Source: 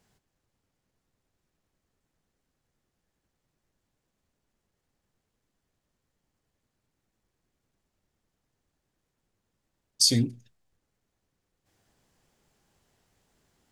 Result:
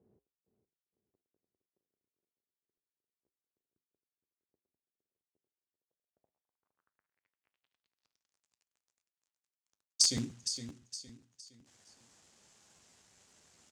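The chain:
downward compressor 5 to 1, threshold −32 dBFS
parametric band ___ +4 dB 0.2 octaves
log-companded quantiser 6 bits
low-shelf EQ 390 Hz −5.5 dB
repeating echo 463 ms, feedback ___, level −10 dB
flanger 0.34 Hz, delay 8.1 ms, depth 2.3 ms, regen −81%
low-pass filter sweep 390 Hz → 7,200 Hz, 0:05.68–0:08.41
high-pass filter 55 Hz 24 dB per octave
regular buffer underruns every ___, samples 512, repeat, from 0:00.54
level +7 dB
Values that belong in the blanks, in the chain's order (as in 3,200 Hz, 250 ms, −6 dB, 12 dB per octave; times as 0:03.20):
220 Hz, 36%, 0.13 s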